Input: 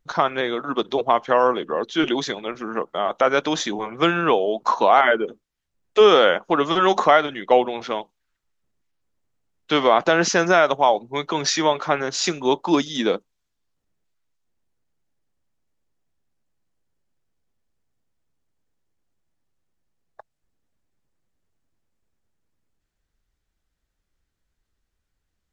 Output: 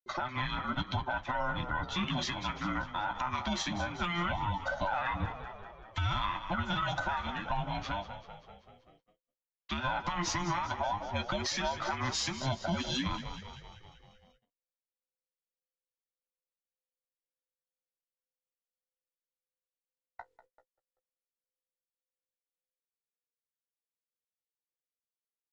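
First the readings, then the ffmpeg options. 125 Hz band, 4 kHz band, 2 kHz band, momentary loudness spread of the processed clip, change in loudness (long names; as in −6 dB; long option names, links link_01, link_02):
−1.0 dB, −10.5 dB, −11.5 dB, 9 LU, −14.0 dB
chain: -filter_complex "[0:a]afftfilt=real='real(if(between(b,1,1008),(2*floor((b-1)/24)+1)*24-b,b),0)':imag='imag(if(between(b,1,1008),(2*floor((b-1)/24)+1)*24-b,b),0)*if(between(b,1,1008),-1,1)':win_size=2048:overlap=0.75,aeval=exprs='0.794*(cos(1*acos(clip(val(0)/0.794,-1,1)))-cos(1*PI/2))+0.0251*(cos(4*acos(clip(val(0)/0.794,-1,1)))-cos(4*PI/2))':channel_layout=same,lowpass=frequency=3100:poles=1,highshelf=frequency=2100:gain=6.5,acrossover=split=210[link_01][link_02];[link_02]dynaudnorm=framelen=400:gausssize=3:maxgain=5.5dB[link_03];[link_01][link_03]amix=inputs=2:normalize=0,flanger=delay=7.3:depth=9.7:regen=-32:speed=0.17:shape=triangular,acompressor=threshold=-20dB:ratio=4,asplit=8[link_04][link_05][link_06][link_07][link_08][link_09][link_10][link_11];[link_05]adelay=193,afreqshift=-44,volume=-14dB[link_12];[link_06]adelay=386,afreqshift=-88,volume=-18.3dB[link_13];[link_07]adelay=579,afreqshift=-132,volume=-22.6dB[link_14];[link_08]adelay=772,afreqshift=-176,volume=-26.9dB[link_15];[link_09]adelay=965,afreqshift=-220,volume=-31.2dB[link_16];[link_10]adelay=1158,afreqshift=-264,volume=-35.5dB[link_17];[link_11]adelay=1351,afreqshift=-308,volume=-39.8dB[link_18];[link_04][link_12][link_13][link_14][link_15][link_16][link_17][link_18]amix=inputs=8:normalize=0,agate=range=-38dB:threshold=-59dB:ratio=16:detection=peak,alimiter=limit=-18.5dB:level=0:latency=1:release=130,volume=-4.5dB"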